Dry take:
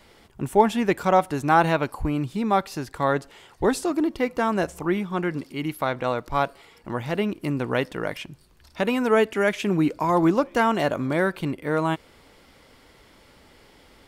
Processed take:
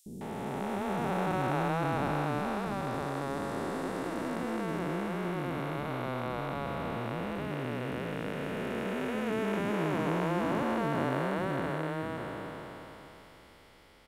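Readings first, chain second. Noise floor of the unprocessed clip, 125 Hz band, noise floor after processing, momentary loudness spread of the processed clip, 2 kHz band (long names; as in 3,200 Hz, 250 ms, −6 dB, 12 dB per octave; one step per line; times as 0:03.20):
−55 dBFS, −5.0 dB, −55 dBFS, 7 LU, −8.5 dB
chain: spectrum smeared in time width 1,420 ms
three-band delay without the direct sound highs, lows, mids 60/210 ms, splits 340/5,700 Hz
level −1 dB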